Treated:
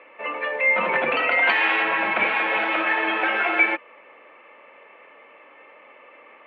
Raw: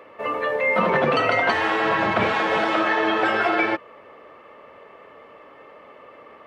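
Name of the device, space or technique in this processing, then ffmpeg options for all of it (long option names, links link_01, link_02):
phone earpiece: -filter_complex "[0:a]highpass=370,equalizer=frequency=420:width_type=q:width=4:gain=-7,equalizer=frequency=660:width_type=q:width=4:gain=-5,equalizer=frequency=1200:width_type=q:width=4:gain=-5,equalizer=frequency=2400:width_type=q:width=4:gain=9,lowpass=frequency=3100:width=0.5412,lowpass=frequency=3100:width=1.3066,asettb=1/sr,asplit=3[link_01][link_02][link_03];[link_01]atrim=end=1.424[link_04];[link_02]atrim=start=1.42:end=1.83,asetpts=PTS-STARTPTS,afade=type=in:duration=0.004:curve=qsin,afade=type=out:start_time=0.406:duration=0.004:curve=qsin,highshelf=frequency=3200:gain=9.5[link_05];[link_03]atrim=start=1.826[link_06];[link_04][link_05]acrossfade=duration=0.004:curve1=hsin:curve2=qsin[link_07];[link_07][link_06]acrossfade=duration=0.004:curve1=qsin:curve2=hsin"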